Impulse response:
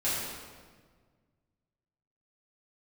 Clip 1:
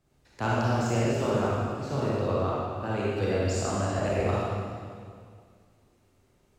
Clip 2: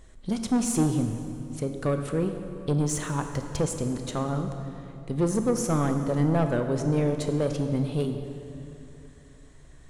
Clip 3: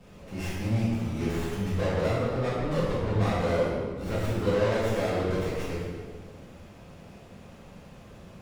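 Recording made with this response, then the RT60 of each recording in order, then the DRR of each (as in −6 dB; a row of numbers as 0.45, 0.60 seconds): 3; 2.1, 2.9, 1.6 seconds; −7.5, 6.0, −11.0 decibels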